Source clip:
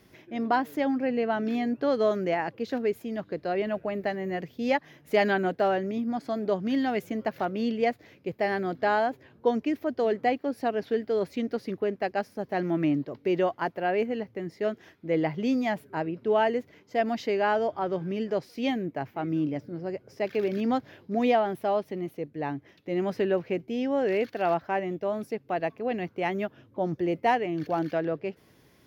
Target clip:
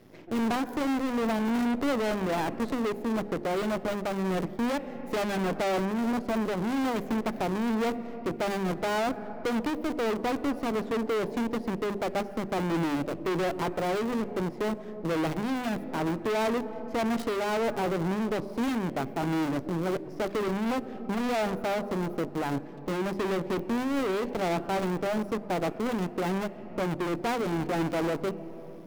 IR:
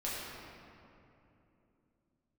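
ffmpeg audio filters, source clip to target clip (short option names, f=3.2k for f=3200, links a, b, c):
-filter_complex "[0:a]asplit=2[a][b];[b]acrusher=bits=3:dc=4:mix=0:aa=0.000001,volume=2.5dB[c];[a][c]amix=inputs=2:normalize=0,aeval=exprs='max(val(0),0)':c=same,equalizer=f=280:w=0.33:g=12,asplit=2[d][e];[1:a]atrim=start_sample=2205[f];[e][f]afir=irnorm=-1:irlink=0,volume=-25dB[g];[d][g]amix=inputs=2:normalize=0,asoftclip=type=hard:threshold=-21dB,bandreject=f=50:t=h:w=6,bandreject=f=100:t=h:w=6,bandreject=f=150:t=h:w=6,bandreject=f=200:t=h:w=6,bandreject=f=250:t=h:w=6,bandreject=f=300:t=h:w=6,bandreject=f=350:t=h:w=6,bandreject=f=400:t=h:w=6,alimiter=limit=-23dB:level=0:latency=1:release=351"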